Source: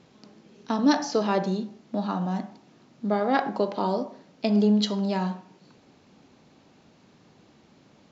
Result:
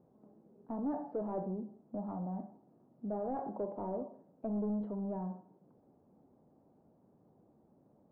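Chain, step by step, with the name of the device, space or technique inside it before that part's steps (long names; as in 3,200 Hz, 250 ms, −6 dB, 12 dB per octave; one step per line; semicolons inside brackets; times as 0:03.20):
overdriven synthesiser ladder filter (soft clipping −22 dBFS, distortion −10 dB; transistor ladder low-pass 940 Hz, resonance 25%)
level −4 dB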